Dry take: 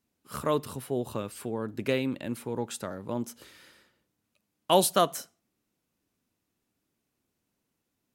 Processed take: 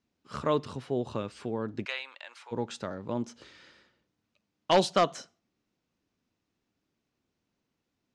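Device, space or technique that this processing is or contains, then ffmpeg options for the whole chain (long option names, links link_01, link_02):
synthesiser wavefolder: -filter_complex "[0:a]asplit=3[link_01][link_02][link_03];[link_01]afade=type=out:start_time=1.84:duration=0.02[link_04];[link_02]highpass=frequency=830:width=0.5412,highpass=frequency=830:width=1.3066,afade=type=in:start_time=1.84:duration=0.02,afade=type=out:start_time=2.51:duration=0.02[link_05];[link_03]afade=type=in:start_time=2.51:duration=0.02[link_06];[link_04][link_05][link_06]amix=inputs=3:normalize=0,aeval=exprs='0.237*(abs(mod(val(0)/0.237+3,4)-2)-1)':channel_layout=same,lowpass=frequency=6300:width=0.5412,lowpass=frequency=6300:width=1.3066,highshelf=frequency=11000:gain=-3.5"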